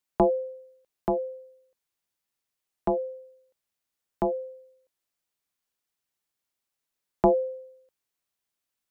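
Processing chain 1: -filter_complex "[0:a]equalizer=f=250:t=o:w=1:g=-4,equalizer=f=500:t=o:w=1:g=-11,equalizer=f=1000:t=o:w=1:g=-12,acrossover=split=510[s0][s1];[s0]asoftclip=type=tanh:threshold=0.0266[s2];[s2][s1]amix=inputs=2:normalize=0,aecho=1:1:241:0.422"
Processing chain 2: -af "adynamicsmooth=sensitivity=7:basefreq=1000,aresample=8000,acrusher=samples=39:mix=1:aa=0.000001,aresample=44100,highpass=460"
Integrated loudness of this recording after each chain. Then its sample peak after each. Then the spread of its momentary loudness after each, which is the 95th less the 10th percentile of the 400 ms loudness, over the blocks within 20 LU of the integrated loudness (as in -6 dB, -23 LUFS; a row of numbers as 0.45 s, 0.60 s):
-41.5 LUFS, -39.5 LUFS; -23.0 dBFS, -10.5 dBFS; 18 LU, 19 LU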